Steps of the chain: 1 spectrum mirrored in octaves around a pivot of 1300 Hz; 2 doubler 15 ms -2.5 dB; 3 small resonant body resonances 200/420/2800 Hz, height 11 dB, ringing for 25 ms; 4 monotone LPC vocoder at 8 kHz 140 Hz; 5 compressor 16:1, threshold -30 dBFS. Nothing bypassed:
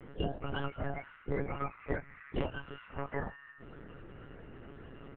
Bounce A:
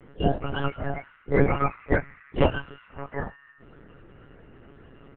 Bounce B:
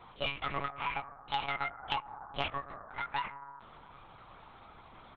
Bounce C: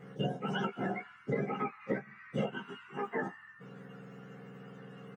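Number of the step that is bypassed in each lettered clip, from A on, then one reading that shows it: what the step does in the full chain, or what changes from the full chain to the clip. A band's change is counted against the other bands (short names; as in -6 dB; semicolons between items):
5, mean gain reduction 4.5 dB; 1, 1 kHz band +14.5 dB; 4, 125 Hz band -2.5 dB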